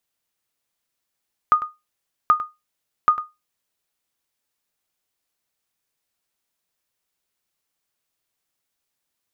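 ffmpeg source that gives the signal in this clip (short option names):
-f lavfi -i "aevalsrc='0.473*(sin(2*PI*1230*mod(t,0.78))*exp(-6.91*mod(t,0.78)/0.21)+0.188*sin(2*PI*1230*max(mod(t,0.78)-0.1,0))*exp(-6.91*max(mod(t,0.78)-0.1,0)/0.21))':d=2.34:s=44100"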